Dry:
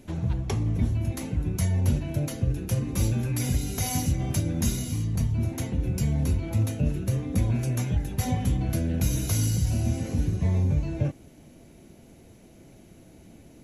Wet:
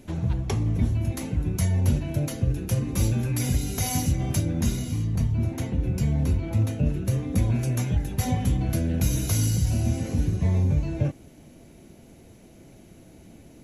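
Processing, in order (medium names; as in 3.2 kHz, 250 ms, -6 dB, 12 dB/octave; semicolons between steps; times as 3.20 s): 4.45–7.05 s: treble shelf 4.7 kHz -7 dB; short-mantissa float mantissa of 8-bit; trim +1.5 dB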